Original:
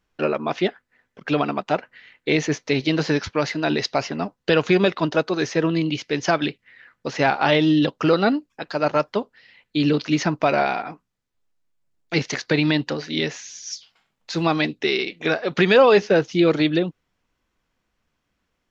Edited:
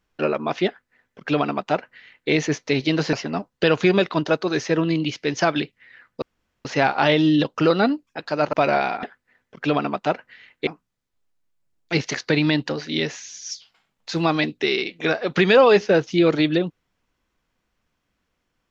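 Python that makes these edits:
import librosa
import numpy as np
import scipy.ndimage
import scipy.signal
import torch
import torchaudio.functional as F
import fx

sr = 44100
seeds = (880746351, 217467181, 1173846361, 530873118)

y = fx.edit(x, sr, fx.duplicate(start_s=0.67, length_s=1.64, to_s=10.88),
    fx.cut(start_s=3.13, length_s=0.86),
    fx.insert_room_tone(at_s=7.08, length_s=0.43),
    fx.cut(start_s=8.96, length_s=1.42), tone=tone)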